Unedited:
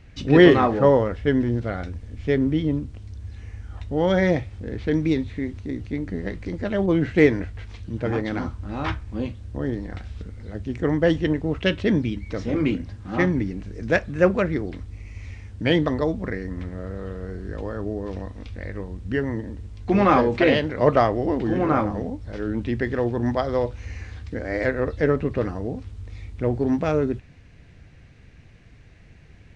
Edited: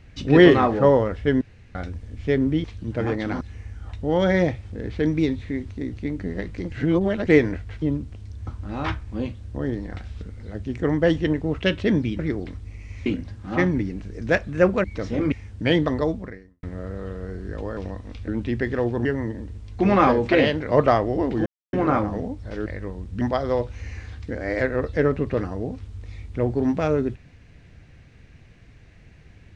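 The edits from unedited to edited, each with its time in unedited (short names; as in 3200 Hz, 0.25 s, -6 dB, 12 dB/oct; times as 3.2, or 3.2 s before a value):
1.41–1.75 room tone
2.64–3.29 swap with 7.7–8.47
6.6–7.15 reverse
12.19–12.67 swap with 14.45–15.32
16.1–16.63 fade out quadratic
17.77–18.08 cut
18.59–19.14 swap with 22.48–23.25
21.55 insert silence 0.27 s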